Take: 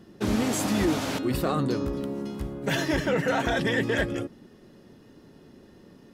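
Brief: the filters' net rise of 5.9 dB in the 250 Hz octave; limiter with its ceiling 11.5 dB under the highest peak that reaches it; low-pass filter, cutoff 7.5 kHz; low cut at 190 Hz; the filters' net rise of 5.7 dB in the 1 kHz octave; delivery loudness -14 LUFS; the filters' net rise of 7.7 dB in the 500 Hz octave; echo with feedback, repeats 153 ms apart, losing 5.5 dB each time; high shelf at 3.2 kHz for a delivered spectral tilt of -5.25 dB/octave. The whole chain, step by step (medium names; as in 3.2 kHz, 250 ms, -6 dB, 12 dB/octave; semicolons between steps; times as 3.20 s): high-pass 190 Hz; low-pass 7.5 kHz; peaking EQ 250 Hz +6.5 dB; peaking EQ 500 Hz +6.5 dB; peaking EQ 1 kHz +5.5 dB; treble shelf 3.2 kHz -7 dB; peak limiter -19 dBFS; feedback delay 153 ms, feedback 53%, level -5.5 dB; trim +12.5 dB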